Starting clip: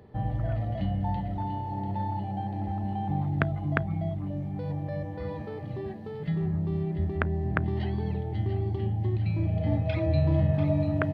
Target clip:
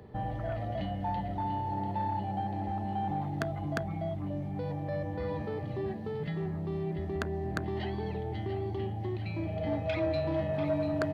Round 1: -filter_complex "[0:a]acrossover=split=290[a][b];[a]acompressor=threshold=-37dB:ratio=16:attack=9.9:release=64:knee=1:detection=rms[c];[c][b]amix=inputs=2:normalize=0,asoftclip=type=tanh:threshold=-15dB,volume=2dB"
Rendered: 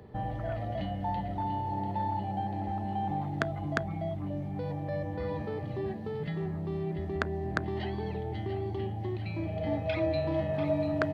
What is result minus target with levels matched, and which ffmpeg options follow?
soft clip: distortion -5 dB
-filter_complex "[0:a]acrossover=split=290[a][b];[a]acompressor=threshold=-37dB:ratio=16:attack=9.9:release=64:knee=1:detection=rms[c];[c][b]amix=inputs=2:normalize=0,asoftclip=type=tanh:threshold=-23dB,volume=2dB"

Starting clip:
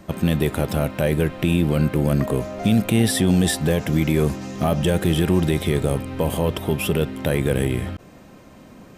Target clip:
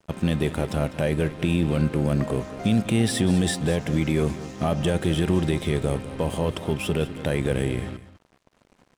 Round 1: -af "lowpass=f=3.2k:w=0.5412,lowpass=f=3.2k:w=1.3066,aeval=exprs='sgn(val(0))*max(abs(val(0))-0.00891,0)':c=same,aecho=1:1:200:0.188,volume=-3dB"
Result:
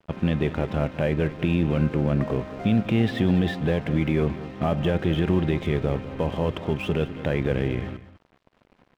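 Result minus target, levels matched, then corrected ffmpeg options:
8000 Hz band -19.5 dB
-af "lowpass=f=10k:w=0.5412,lowpass=f=10k:w=1.3066,aeval=exprs='sgn(val(0))*max(abs(val(0))-0.00891,0)':c=same,aecho=1:1:200:0.188,volume=-3dB"

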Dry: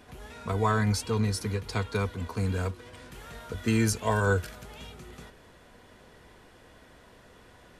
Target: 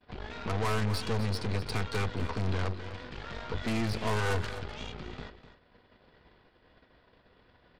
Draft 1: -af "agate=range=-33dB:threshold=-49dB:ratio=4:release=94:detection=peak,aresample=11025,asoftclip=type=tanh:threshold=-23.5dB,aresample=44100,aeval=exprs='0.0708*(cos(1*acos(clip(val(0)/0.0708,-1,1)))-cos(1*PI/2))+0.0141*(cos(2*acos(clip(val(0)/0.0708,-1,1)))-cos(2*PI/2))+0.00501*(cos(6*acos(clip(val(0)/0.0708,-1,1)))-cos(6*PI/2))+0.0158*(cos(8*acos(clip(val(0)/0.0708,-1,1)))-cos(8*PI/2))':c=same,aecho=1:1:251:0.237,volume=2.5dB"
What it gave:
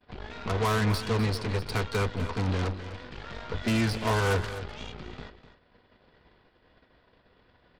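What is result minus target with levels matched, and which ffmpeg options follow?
soft clip: distortion -5 dB
-af "agate=range=-33dB:threshold=-49dB:ratio=4:release=94:detection=peak,aresample=11025,asoftclip=type=tanh:threshold=-30dB,aresample=44100,aeval=exprs='0.0708*(cos(1*acos(clip(val(0)/0.0708,-1,1)))-cos(1*PI/2))+0.0141*(cos(2*acos(clip(val(0)/0.0708,-1,1)))-cos(2*PI/2))+0.00501*(cos(6*acos(clip(val(0)/0.0708,-1,1)))-cos(6*PI/2))+0.0158*(cos(8*acos(clip(val(0)/0.0708,-1,1)))-cos(8*PI/2))':c=same,aecho=1:1:251:0.237,volume=2.5dB"

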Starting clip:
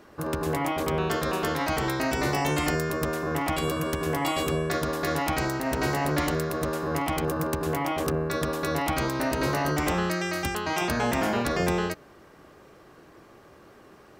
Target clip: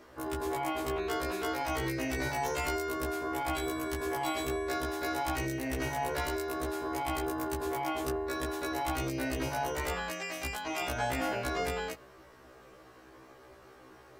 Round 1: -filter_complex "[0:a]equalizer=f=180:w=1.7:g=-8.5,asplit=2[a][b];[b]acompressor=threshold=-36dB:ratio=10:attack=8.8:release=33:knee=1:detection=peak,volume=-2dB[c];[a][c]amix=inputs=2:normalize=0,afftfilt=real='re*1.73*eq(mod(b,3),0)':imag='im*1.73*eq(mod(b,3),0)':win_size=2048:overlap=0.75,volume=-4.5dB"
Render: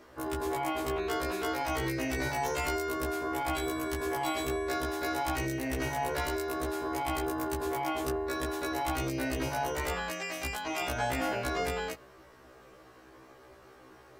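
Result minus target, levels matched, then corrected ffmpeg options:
compressor: peak gain reduction -6 dB
-filter_complex "[0:a]equalizer=f=180:w=1.7:g=-8.5,asplit=2[a][b];[b]acompressor=threshold=-42.5dB:ratio=10:attack=8.8:release=33:knee=1:detection=peak,volume=-2dB[c];[a][c]amix=inputs=2:normalize=0,afftfilt=real='re*1.73*eq(mod(b,3),0)':imag='im*1.73*eq(mod(b,3),0)':win_size=2048:overlap=0.75,volume=-4.5dB"

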